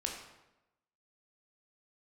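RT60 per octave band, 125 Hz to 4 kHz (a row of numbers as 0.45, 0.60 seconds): 0.95, 1.0, 1.0, 0.95, 0.80, 0.70 seconds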